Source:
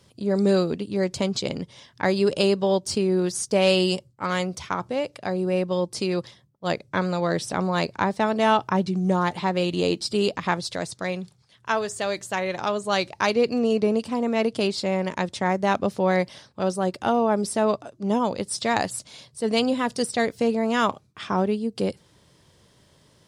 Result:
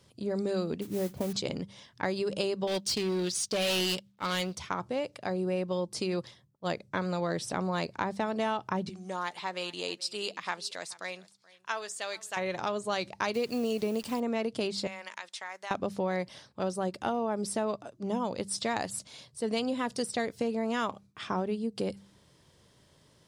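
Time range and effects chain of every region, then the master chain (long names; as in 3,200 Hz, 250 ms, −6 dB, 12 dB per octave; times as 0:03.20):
0:00.81–0:01.33: low-pass filter 1,100 Hz + noise that follows the level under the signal 16 dB
0:02.67–0:04.57: mu-law and A-law mismatch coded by A + parametric band 3,600 Hz +12 dB 1.5 octaves + gain into a clipping stage and back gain 19.5 dB
0:08.89–0:12.37: high-pass filter 1,300 Hz 6 dB per octave + single-tap delay 430 ms −22.5 dB
0:13.34–0:14.20: hold until the input has moved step −44 dBFS + high-shelf EQ 2,400 Hz +8 dB
0:14.87–0:15.71: high-pass filter 1,300 Hz + downward compressor 3 to 1, threshold −31 dBFS
whole clip: downward compressor, threshold −22 dBFS; hum removal 98.76 Hz, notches 2; level −4.5 dB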